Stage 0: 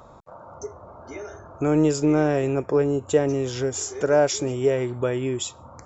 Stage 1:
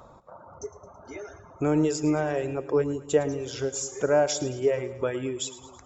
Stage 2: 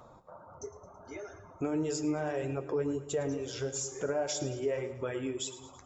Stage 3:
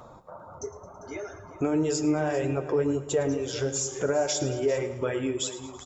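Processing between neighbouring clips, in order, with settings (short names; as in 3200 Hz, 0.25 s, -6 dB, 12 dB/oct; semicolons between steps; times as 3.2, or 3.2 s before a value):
reverb removal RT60 1.6 s; resonator 180 Hz, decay 0.94 s, harmonics odd, mix 60%; split-band echo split 390 Hz, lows 0.198 s, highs 0.109 s, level -15 dB; gain +5.5 dB
limiter -20.5 dBFS, peak gain reduction 10.5 dB; flange 1.6 Hz, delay 7.8 ms, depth 4.2 ms, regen -48%; on a send at -15.5 dB: reverb RT60 1.2 s, pre-delay 6 ms
echo 0.397 s -16 dB; gain +6.5 dB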